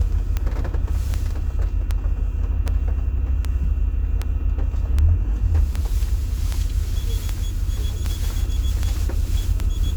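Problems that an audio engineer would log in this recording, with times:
scratch tick 78 rpm −10 dBFS

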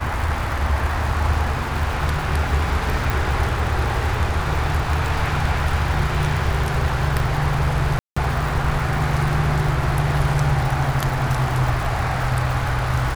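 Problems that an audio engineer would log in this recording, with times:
surface crackle 270 per second −28 dBFS
0:03.10: click
0:07.99–0:08.16: drop-out 175 ms

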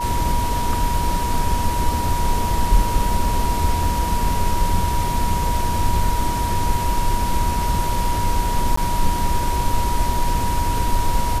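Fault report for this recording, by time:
whistle 960 Hz −23 dBFS
0:08.76–0:08.77: drop-out 14 ms

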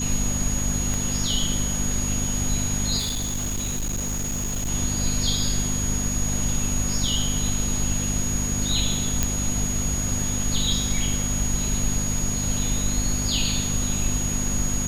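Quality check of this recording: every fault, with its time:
mains hum 50 Hz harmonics 5 −29 dBFS
whistle 6,700 Hz −27 dBFS
0:00.94: click
0:02.98–0:04.70: clipping −23.5 dBFS
0:09.23: click −6 dBFS

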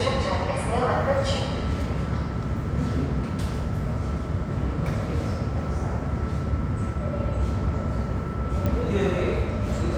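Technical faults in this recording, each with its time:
0:08.66: click −15 dBFS

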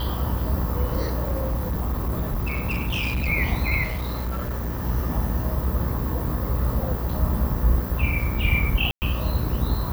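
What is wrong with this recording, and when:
mains buzz 60 Hz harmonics 33 −28 dBFS
0:01.23–0:03.28: clipping −21 dBFS
0:03.83–0:04.83: clipping −24 dBFS
0:08.91–0:09.02: drop-out 109 ms

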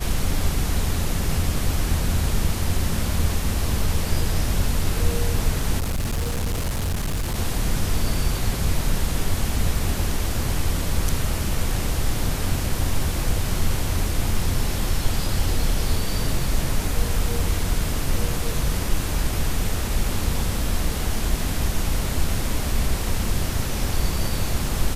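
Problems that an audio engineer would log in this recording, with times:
0:05.79–0:07.35: clipping −20.5 dBFS

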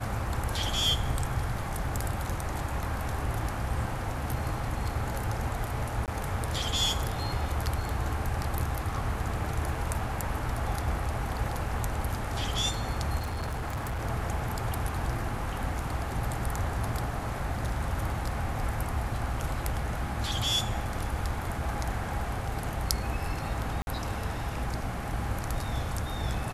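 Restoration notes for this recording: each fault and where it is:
0:06.06–0:06.08: drop-out 18 ms
0:13.18–0:14.01: clipping −29 dBFS
0:23.82–0:23.87: drop-out 51 ms

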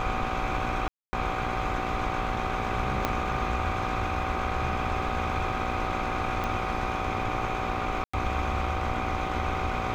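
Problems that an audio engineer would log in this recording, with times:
mains buzz 60 Hz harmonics 19 −34 dBFS
whistle 760 Hz −34 dBFS
0:00.88–0:01.13: drop-out 250 ms
0:03.05: click −10 dBFS
0:06.44: click −17 dBFS
0:08.04–0:08.13: drop-out 95 ms

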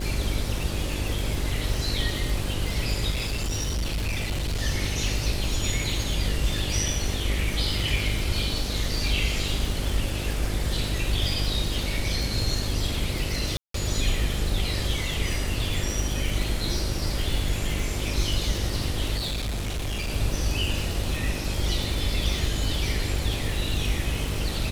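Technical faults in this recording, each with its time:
mains buzz 50 Hz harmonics 12 −31 dBFS
surface crackle 220 per second −30 dBFS
0:03.10–0:04.62: clipping −23.5 dBFS
0:13.57–0:13.74: drop-out 173 ms
0:19.17–0:20.10: clipping −25.5 dBFS

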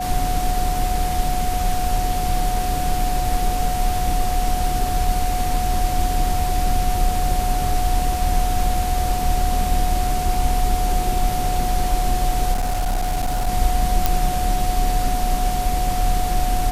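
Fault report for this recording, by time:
whistle 730 Hz −23 dBFS
0:12.53–0:13.49: clipping −17 dBFS
0:14.06: click

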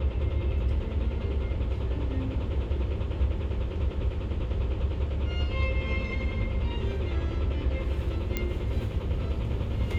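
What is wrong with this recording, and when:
0:08.37: click −14 dBFS

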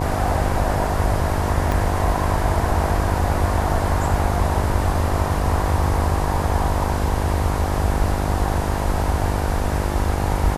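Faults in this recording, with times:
mains buzz 50 Hz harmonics 19 −25 dBFS
0:01.72: click

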